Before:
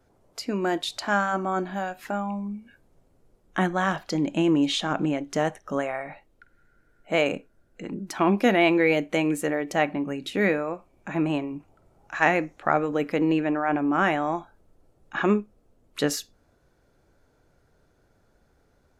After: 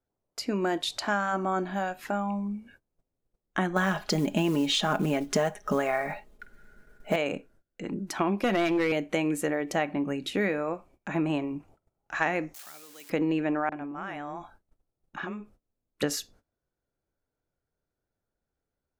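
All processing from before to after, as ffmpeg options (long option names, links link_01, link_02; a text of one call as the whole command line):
ffmpeg -i in.wav -filter_complex "[0:a]asettb=1/sr,asplit=3[link_01][link_02][link_03];[link_01]atrim=end=3.764[link_04];[link_02]atrim=start=3.76:end=7.16,asetpts=PTS-STARTPTS,afade=type=in:duration=0.004:curve=qsin,afade=type=out:start_time=3.396:duration=0.004:curve=qsin,acontrast=44,acrusher=bits=7:mode=log:mix=0:aa=0.000001,aecho=1:1:4.8:0.57,atrim=end_sample=149940[link_05];[link_03]atrim=start=7.156[link_06];[link_04][link_05]acrossfade=duration=0.004:curve1=hsin:curve2=qsin[link_07];[link_07][link_06]acrossfade=duration=0.004:curve1=qsin:curve2=hsin,asettb=1/sr,asplit=3[link_08][link_09][link_10];[link_08]atrim=end=8.434[link_11];[link_09]atrim=start=8.43:end=8.92,asetpts=PTS-STARTPTS,afade=type=in:duration=0.004:curve=qsin,afade=type=out:start_time=0.486:duration=0.004:curve=qsin,highpass=frequency=68:width=0.5412,highpass=frequency=68:width=1.3066,aecho=1:1:5.6:0.37,atrim=end_sample=21609,aeval=exprs='clip(val(0),-1,0.15)':channel_layout=same[link_12];[link_10]atrim=start=8.916[link_13];[link_11][link_12]acrossfade=duration=0.004:curve1=hsin:curve2=qsin[link_14];[link_14][link_13]acrossfade=duration=0.004:curve1=qsin:curve2=hsin,asettb=1/sr,asplit=3[link_15][link_16][link_17];[link_15]atrim=end=12.544[link_18];[link_16]atrim=start=12.54:end=13.1,asetpts=PTS-STARTPTS,afade=type=in:duration=0.004:curve=qsin,afade=type=out:start_time=0.556:duration=0.004:curve=qsin,aeval=exprs='val(0)+0.5*0.02*sgn(val(0))':channel_layout=same,aderivative,acrossover=split=320|3000[link_19][link_20][link_21];[link_20]acompressor=threshold=-53dB:ratio=3:attack=3.2:release=140:knee=2.83:detection=peak[link_22];[link_19][link_22][link_21]amix=inputs=3:normalize=0[link_23];[link_17]atrim=start=13.096[link_24];[link_18][link_23]acrossfade=duration=0.004:curve1=hsin:curve2=qsin[link_25];[link_25][link_24]acrossfade=duration=0.004:curve1=qsin:curve2=hsin,asettb=1/sr,asplit=3[link_26][link_27][link_28];[link_26]atrim=end=13.694[link_29];[link_27]atrim=start=13.69:end=16.03,asetpts=PTS-STARTPTS,afade=type=in:duration=0.004:curve=qsin,afade=type=out:start_time=2.336:duration=0.004:curve=qsin,bandreject=frequency=6800:width=20,acompressor=threshold=-31dB:ratio=16:attack=3.2:release=140:knee=1:detection=peak,acrossover=split=450[link_30][link_31];[link_31]adelay=30[link_32];[link_30][link_32]amix=inputs=2:normalize=0,atrim=end_sample=103194[link_33];[link_28]atrim=start=16.026[link_34];[link_29][link_33]acrossfade=duration=0.004:curve1=hsin:curve2=qsin[link_35];[link_35][link_34]acrossfade=duration=0.004:curve1=qsin:curve2=hsin,agate=range=-22dB:threshold=-54dB:ratio=16:detection=peak,acompressor=threshold=-23dB:ratio=5" out.wav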